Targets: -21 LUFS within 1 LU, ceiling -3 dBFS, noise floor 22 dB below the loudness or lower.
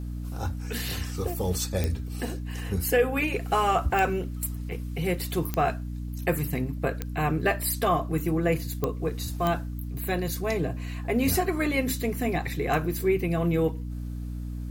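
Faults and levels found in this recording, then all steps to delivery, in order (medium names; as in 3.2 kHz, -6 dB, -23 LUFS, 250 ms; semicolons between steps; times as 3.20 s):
clicks found 6; hum 60 Hz; highest harmonic 300 Hz; hum level -31 dBFS; loudness -28.0 LUFS; peak level -10.5 dBFS; loudness target -21.0 LUFS
-> de-click; de-hum 60 Hz, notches 5; trim +7 dB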